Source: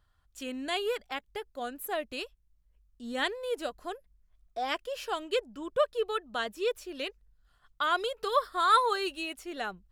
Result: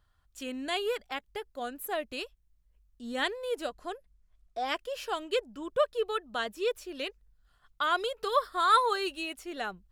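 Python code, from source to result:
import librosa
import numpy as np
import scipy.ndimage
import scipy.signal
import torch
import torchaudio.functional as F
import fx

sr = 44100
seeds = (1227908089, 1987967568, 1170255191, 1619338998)

y = fx.lowpass(x, sr, hz=11000.0, slope=12, at=(3.67, 4.66))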